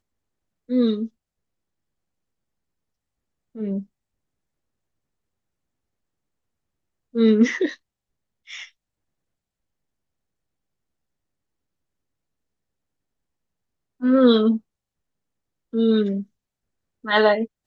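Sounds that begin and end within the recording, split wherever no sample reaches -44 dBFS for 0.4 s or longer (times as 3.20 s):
0.69–1.08 s
3.55–3.84 s
7.14–7.76 s
8.47–8.68 s
14.00–14.59 s
15.73–16.24 s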